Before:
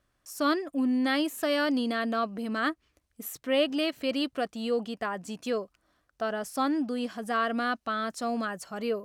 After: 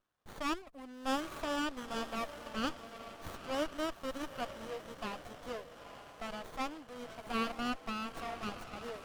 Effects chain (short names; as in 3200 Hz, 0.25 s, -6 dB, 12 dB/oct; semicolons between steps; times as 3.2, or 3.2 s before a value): HPF 930 Hz 12 dB/oct; diffused feedback echo 0.906 s, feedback 48%, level -9.5 dB; running maximum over 17 samples; gain -3 dB